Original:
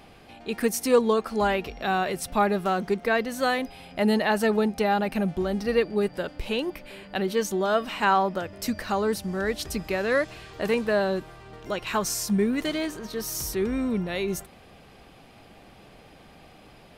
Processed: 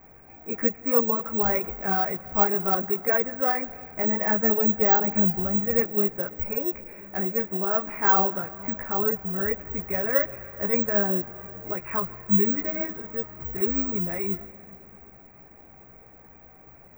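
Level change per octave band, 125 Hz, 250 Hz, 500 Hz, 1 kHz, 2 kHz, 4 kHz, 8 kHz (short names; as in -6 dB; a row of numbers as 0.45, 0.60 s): -0.5 dB, -2.0 dB, -3.0 dB, -2.0 dB, -3.0 dB, under -30 dB, under -40 dB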